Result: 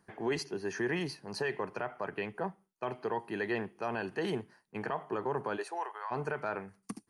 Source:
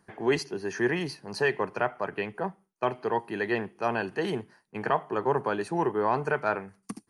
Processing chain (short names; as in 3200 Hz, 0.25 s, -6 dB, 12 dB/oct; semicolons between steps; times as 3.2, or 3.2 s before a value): limiter -20 dBFS, peak gain reduction 7 dB; 5.56–6.1 HPF 350 Hz -> 990 Hz 24 dB/oct; gain -3.5 dB